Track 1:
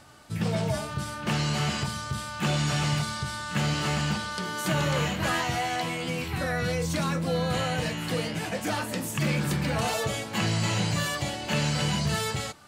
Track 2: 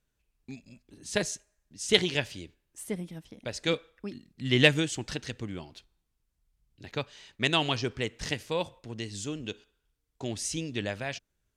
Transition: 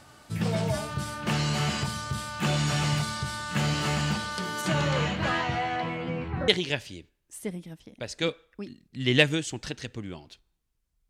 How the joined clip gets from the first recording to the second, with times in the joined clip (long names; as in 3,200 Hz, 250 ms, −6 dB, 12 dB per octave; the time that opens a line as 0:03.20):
track 1
0:04.61–0:06.48: low-pass filter 8,400 Hz → 1,200 Hz
0:06.48: continue with track 2 from 0:01.93